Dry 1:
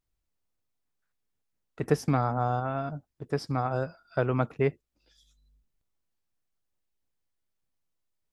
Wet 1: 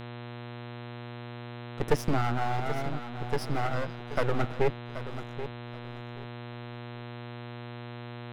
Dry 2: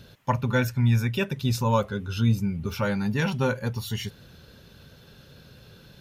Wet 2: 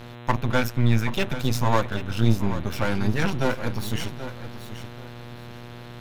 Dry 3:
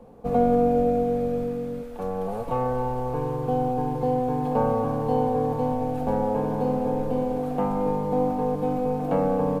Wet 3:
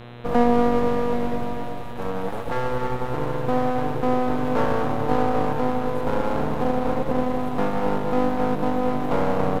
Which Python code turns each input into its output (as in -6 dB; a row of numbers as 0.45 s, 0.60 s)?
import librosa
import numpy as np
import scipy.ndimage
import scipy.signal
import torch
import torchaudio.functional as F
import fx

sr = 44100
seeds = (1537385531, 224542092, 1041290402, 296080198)

y = np.maximum(x, 0.0)
y = fx.echo_feedback(y, sr, ms=780, feedback_pct=22, wet_db=-12)
y = fx.dmg_buzz(y, sr, base_hz=120.0, harmonics=34, level_db=-46.0, tilt_db=-5, odd_only=False)
y = y * 10.0 ** (5.0 / 20.0)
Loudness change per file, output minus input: -5.0 LU, +0.5 LU, +1.0 LU